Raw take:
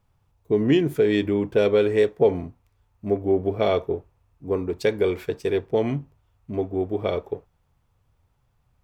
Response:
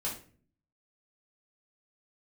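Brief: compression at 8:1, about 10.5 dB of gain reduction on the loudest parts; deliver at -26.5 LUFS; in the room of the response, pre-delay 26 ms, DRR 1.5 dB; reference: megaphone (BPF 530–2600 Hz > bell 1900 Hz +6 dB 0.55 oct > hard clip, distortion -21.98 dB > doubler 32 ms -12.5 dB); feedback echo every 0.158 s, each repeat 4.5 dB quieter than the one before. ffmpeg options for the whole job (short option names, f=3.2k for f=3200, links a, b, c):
-filter_complex "[0:a]acompressor=threshold=-25dB:ratio=8,aecho=1:1:158|316|474|632|790|948|1106|1264|1422:0.596|0.357|0.214|0.129|0.0772|0.0463|0.0278|0.0167|0.01,asplit=2[a][b];[1:a]atrim=start_sample=2205,adelay=26[c];[b][c]afir=irnorm=-1:irlink=0,volume=-4.5dB[d];[a][d]amix=inputs=2:normalize=0,highpass=530,lowpass=2.6k,equalizer=f=1.9k:t=o:w=0.55:g=6,asoftclip=type=hard:threshold=-22.5dB,asplit=2[e][f];[f]adelay=32,volume=-12.5dB[g];[e][g]amix=inputs=2:normalize=0,volume=5.5dB"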